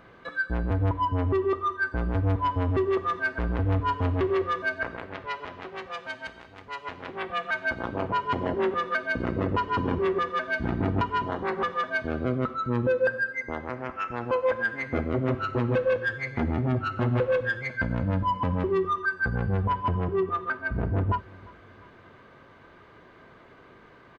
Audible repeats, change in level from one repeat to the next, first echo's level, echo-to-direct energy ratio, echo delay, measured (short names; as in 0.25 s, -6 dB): 2, -6.5 dB, -23.5 dB, -22.5 dB, 0.348 s